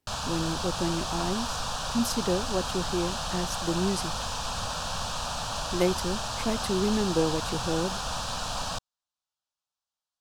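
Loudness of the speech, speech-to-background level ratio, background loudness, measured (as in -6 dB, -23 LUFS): -30.5 LUFS, 1.5 dB, -32.0 LUFS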